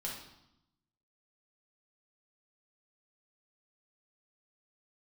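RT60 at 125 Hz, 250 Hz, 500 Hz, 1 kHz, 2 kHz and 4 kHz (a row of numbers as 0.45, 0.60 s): 1.2, 1.1, 0.80, 0.85, 0.75, 0.80 s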